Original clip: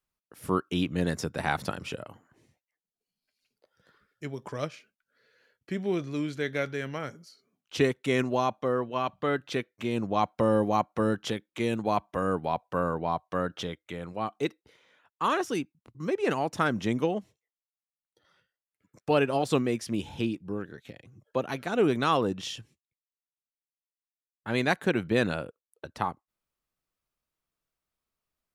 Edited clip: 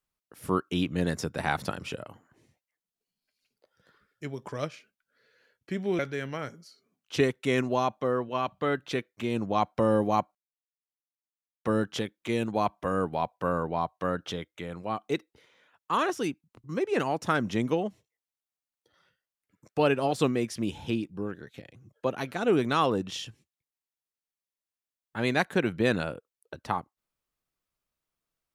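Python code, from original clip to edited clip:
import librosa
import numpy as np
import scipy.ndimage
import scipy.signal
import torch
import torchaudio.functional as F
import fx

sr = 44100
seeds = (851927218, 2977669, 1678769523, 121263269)

y = fx.edit(x, sr, fx.cut(start_s=5.99, length_s=0.61),
    fx.insert_silence(at_s=10.96, length_s=1.3), tone=tone)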